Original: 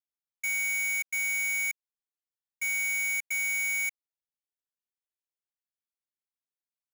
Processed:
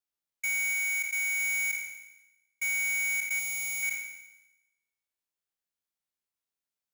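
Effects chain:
peak hold with a decay on every bin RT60 1.00 s
0:00.73–0:01.40: elliptic high-pass filter 620 Hz, stop band 40 dB
0:03.39–0:03.83: parametric band 1,700 Hz −11 dB 0.87 octaves

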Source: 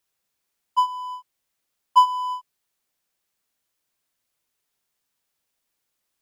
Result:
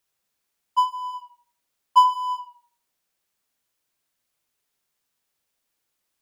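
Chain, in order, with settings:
tape delay 81 ms, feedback 33%, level −9 dB

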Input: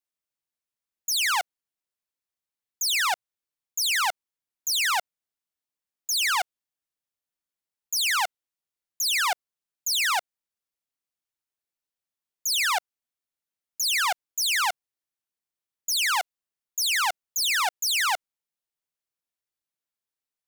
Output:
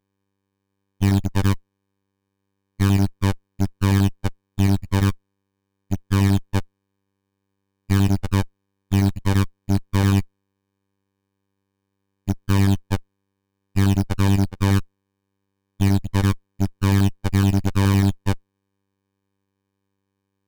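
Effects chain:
slices reordered back to front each 85 ms, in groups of 3
phases set to zero 98.3 Hz
windowed peak hold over 65 samples

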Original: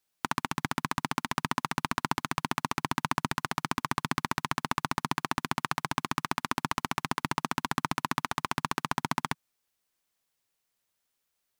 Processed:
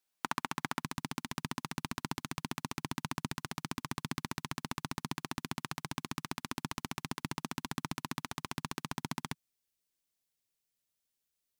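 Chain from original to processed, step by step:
parametric band 65 Hz −8.5 dB 2.2 octaves, from 0:00.84 1,100 Hz
level −4 dB

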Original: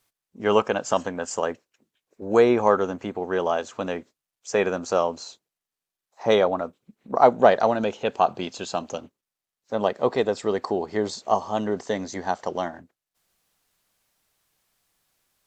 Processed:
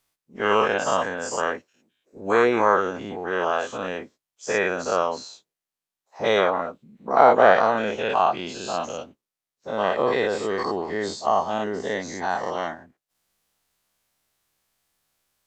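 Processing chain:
every bin's largest magnitude spread in time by 120 ms
dynamic equaliser 1,700 Hz, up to +7 dB, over −31 dBFS, Q 0.93
level −6.5 dB

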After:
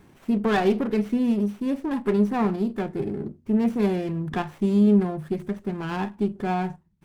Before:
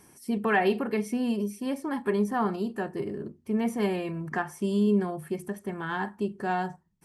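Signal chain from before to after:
low-shelf EQ 340 Hz +8.5 dB
windowed peak hold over 9 samples

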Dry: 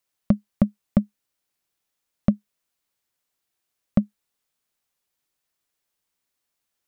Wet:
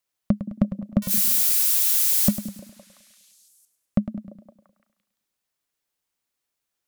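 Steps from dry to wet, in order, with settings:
0:01.02–0:02.31: spike at every zero crossing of −14.5 dBFS
echo through a band-pass that steps 171 ms, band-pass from 280 Hz, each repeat 0.7 octaves, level −11 dB
feedback echo with a swinging delay time 103 ms, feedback 50%, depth 96 cents, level −12 dB
level −2 dB

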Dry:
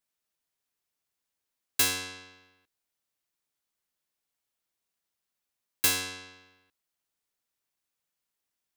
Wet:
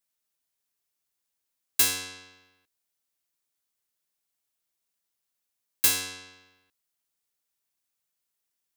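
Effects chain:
high-shelf EQ 4,700 Hz +6.5 dB
level −2 dB

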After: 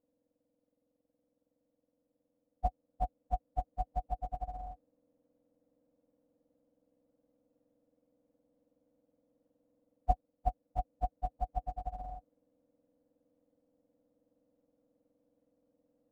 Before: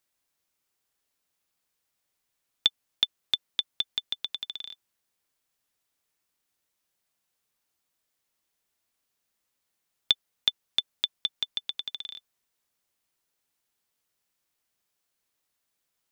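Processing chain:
frequency axis turned over on the octave scale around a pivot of 1,100 Hz
ring modulation 390 Hz
speech leveller within 3 dB
level −5.5 dB

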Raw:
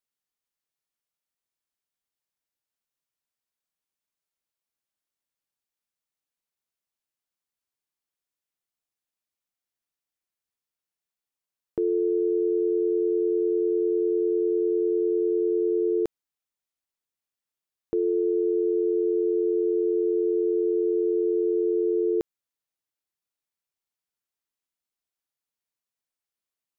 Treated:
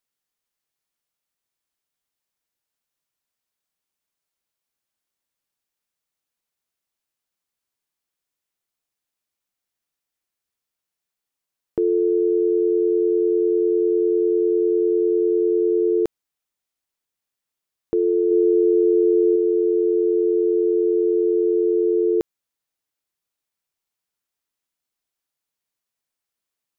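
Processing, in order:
0:18.31–0:19.36: low-shelf EQ 360 Hz +5 dB
level +5 dB

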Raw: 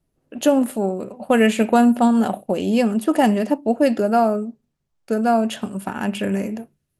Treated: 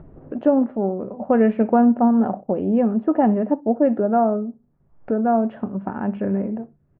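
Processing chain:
on a send: repeating echo 61 ms, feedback 16%, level −24 dB
on the sum: upward compression, threshold −21 dBFS
Bessel low-pass filter 1,000 Hz, order 4

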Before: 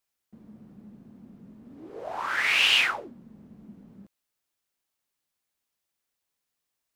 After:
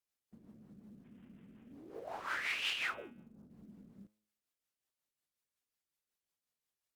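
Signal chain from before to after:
0:01.04–0:01.72: variable-slope delta modulation 16 kbit/s
0:02.94–0:03.50: elliptic low-pass filter 1,500 Hz, stop band 60 dB
hum removal 106.1 Hz, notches 36
brickwall limiter −20 dBFS, peak gain reduction 10 dB
rotating-speaker cabinet horn 5.5 Hz
floating-point word with a short mantissa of 4 bits
level −6 dB
Opus 64 kbit/s 48,000 Hz

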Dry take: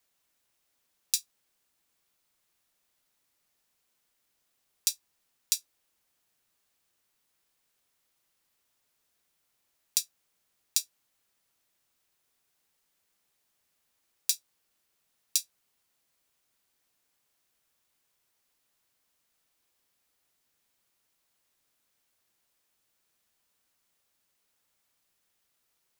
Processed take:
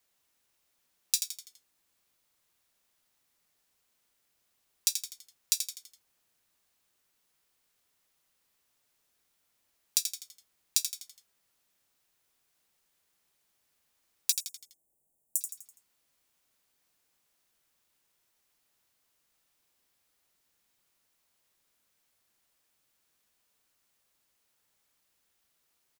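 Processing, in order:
0:14.32–0:15.41: elliptic band-stop filter 770–7,800 Hz, stop band 40 dB
echo with shifted repeats 83 ms, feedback 46%, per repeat −98 Hz, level −7.5 dB

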